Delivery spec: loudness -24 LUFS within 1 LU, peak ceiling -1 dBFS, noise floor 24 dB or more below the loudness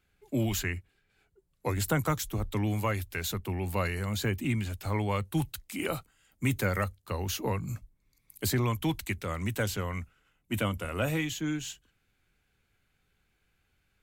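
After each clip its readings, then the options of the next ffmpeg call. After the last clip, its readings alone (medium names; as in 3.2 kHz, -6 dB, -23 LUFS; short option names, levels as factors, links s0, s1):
loudness -32.0 LUFS; peak level -17.0 dBFS; loudness target -24.0 LUFS
-> -af "volume=2.51"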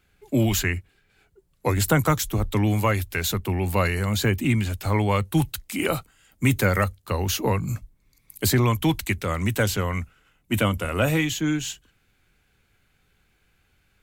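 loudness -24.0 LUFS; peak level -9.0 dBFS; noise floor -66 dBFS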